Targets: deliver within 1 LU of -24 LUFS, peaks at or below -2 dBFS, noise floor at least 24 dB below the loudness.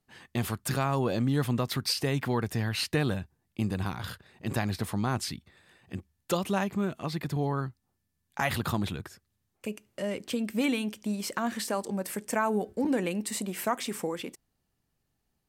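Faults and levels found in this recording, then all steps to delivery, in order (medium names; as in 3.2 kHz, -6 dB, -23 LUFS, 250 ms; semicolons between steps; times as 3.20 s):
loudness -31.0 LUFS; peak level -13.5 dBFS; loudness target -24.0 LUFS
-> trim +7 dB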